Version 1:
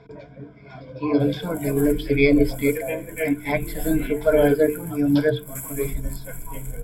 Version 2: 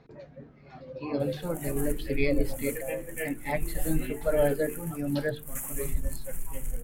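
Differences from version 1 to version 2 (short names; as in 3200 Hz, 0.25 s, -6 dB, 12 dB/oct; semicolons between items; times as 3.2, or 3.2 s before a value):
speech -6.0 dB; master: remove ripple EQ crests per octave 1.7, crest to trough 14 dB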